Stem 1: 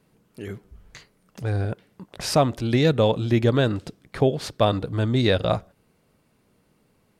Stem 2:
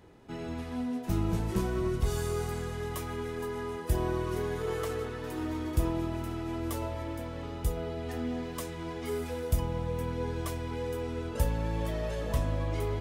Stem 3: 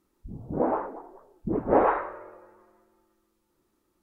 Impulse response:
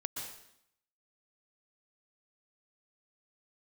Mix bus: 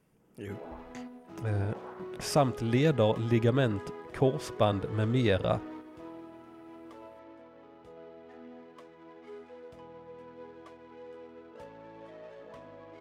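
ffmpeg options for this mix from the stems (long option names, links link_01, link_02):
-filter_complex "[0:a]equalizer=frequency=4100:width=5.2:gain=-11.5,volume=-6dB,asplit=2[link_01][link_02];[1:a]adynamicsmooth=sensitivity=6:basefreq=1500,adelay=200,volume=-3.5dB[link_03];[2:a]volume=-18.5dB[link_04];[link_02]apad=whole_len=582492[link_05];[link_03][link_05]sidechaingate=range=-7dB:threshold=-58dB:ratio=16:detection=peak[link_06];[link_06][link_04]amix=inputs=2:normalize=0,highpass=310,alimiter=level_in=10.5dB:limit=-24dB:level=0:latency=1:release=180,volume=-10.5dB,volume=0dB[link_07];[link_01][link_07]amix=inputs=2:normalize=0"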